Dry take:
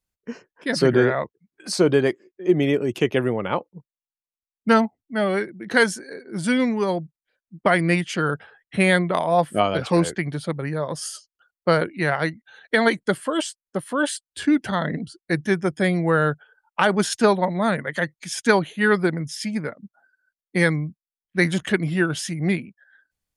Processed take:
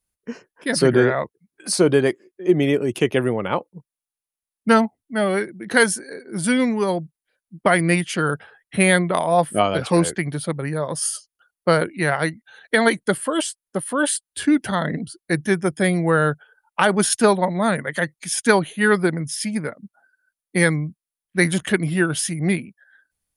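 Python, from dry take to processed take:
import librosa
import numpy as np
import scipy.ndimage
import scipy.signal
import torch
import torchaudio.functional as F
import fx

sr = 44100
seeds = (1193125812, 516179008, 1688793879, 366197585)

y = fx.peak_eq(x, sr, hz=9900.0, db=13.0, octaves=0.28)
y = F.gain(torch.from_numpy(y), 1.5).numpy()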